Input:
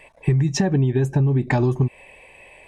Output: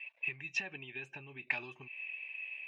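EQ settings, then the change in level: band-pass filter 2.6 kHz, Q 10; distance through air 51 m; +8.0 dB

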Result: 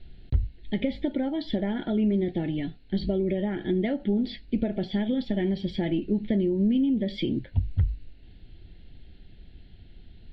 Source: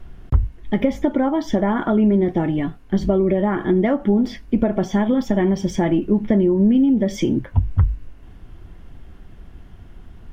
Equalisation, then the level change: resonant low-pass 4.2 kHz, resonance Q 9.4; static phaser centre 2.7 kHz, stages 4; -7.5 dB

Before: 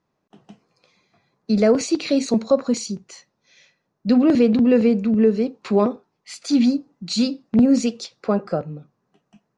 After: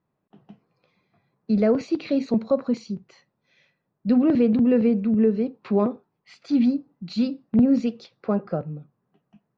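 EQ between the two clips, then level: distance through air 250 m; peaking EQ 130 Hz +4.5 dB 1.4 oct; -4.0 dB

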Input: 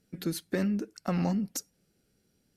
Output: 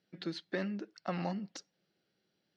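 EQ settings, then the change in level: cabinet simulation 210–4200 Hz, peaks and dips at 250 Hz -10 dB, 450 Hz -7 dB, 1.4 kHz -3 dB, 2.4 kHz -5 dB; bass shelf 390 Hz -5 dB; peaking EQ 980 Hz -2.5 dB; +1.0 dB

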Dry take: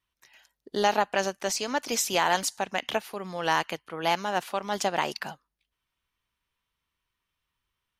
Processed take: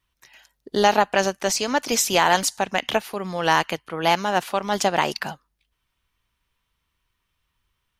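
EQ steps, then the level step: bass shelf 120 Hz +7 dB; +6.0 dB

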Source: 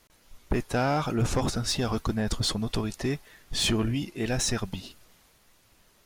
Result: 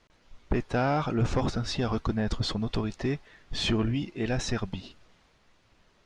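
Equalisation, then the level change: distance through air 130 m; 0.0 dB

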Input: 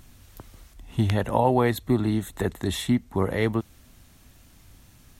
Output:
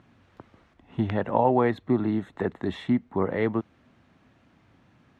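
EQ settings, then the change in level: band-pass 150–2000 Hz; 0.0 dB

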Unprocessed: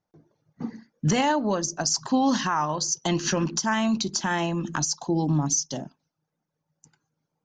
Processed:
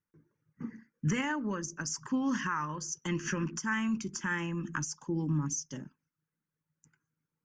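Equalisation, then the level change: peaking EQ 1.8 kHz +3 dB 1.7 oct; static phaser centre 1.7 kHz, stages 4; -6.0 dB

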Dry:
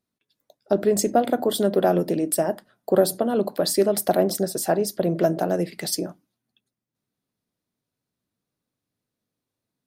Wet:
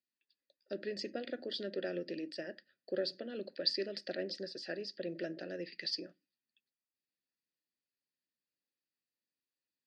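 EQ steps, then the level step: vowel filter e; four-pole ladder low-pass 4.9 kHz, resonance 85%; high-order bell 630 Hz -15 dB 1.3 oct; +14.0 dB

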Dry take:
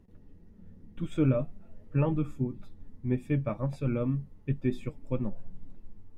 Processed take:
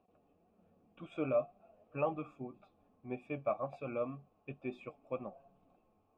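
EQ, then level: vowel filter a; +9.5 dB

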